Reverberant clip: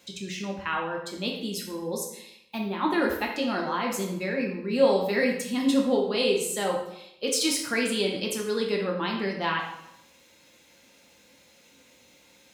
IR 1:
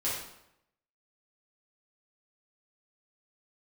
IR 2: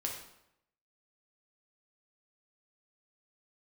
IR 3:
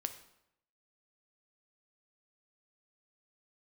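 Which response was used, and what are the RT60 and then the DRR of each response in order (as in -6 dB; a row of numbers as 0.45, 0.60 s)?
2; 0.80, 0.80, 0.80 s; -9.0, -0.5, 8.0 dB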